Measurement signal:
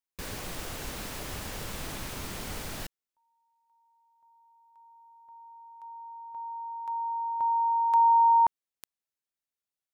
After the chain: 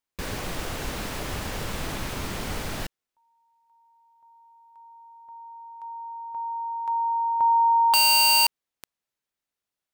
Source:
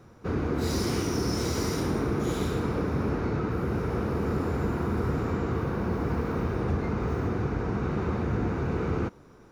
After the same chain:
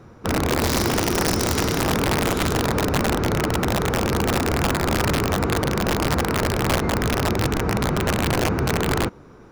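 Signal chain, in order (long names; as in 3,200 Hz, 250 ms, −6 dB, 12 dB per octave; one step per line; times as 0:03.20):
high-shelf EQ 5,300 Hz −6.5 dB
wrap-around overflow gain 21 dB
level +7 dB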